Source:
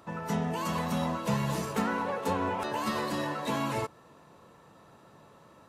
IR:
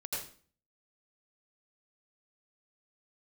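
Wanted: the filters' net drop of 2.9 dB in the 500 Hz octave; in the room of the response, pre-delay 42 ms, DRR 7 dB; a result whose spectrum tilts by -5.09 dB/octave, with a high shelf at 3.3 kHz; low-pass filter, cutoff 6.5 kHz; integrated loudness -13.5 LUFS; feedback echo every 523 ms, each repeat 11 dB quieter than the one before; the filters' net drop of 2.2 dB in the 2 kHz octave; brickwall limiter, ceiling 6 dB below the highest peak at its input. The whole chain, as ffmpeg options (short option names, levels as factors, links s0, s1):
-filter_complex "[0:a]lowpass=6500,equalizer=f=500:t=o:g=-3.5,equalizer=f=2000:t=o:g=-4.5,highshelf=f=3300:g=6,alimiter=limit=0.0631:level=0:latency=1,aecho=1:1:523|1046|1569:0.282|0.0789|0.0221,asplit=2[s0][s1];[1:a]atrim=start_sample=2205,adelay=42[s2];[s1][s2]afir=irnorm=-1:irlink=0,volume=0.355[s3];[s0][s3]amix=inputs=2:normalize=0,volume=9.44"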